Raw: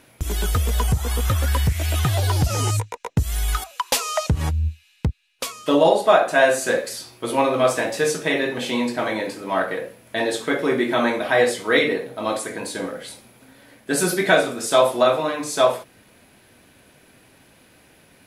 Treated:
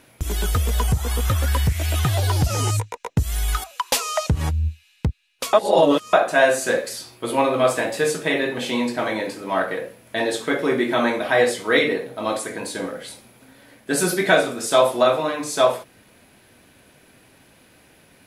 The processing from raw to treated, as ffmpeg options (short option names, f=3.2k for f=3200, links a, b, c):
-filter_complex "[0:a]asettb=1/sr,asplit=3[a][b][c];[a]atrim=end=7.154[d];[b]atrim=start=7.15:end=8.58,asetpts=PTS-STARTPTS,afade=t=in:d=0.004:c=qsin,afade=t=out:st=1.426:d=0.004:c=qsin,equalizer=f=5.8k:t=o:w=0.22:g=-6.5[e];[c]atrim=start=8.576[f];[d][e]acrossfade=d=0.004:c1=hsin:c2=qsin[g];[g][f]acrossfade=d=0.004:c1=qsin:c2=hsin,asplit=3[h][i][j];[h]atrim=end=5.532[k];[i]atrim=start=5.528:end=6.132,asetpts=PTS-STARTPTS,areverse[l];[j]atrim=start=6.128[m];[k][l]acrossfade=d=0.004:c1=hsin:c2=hsin[n];[n][m]acrossfade=d=0.004:c1=hsin:c2=hsin"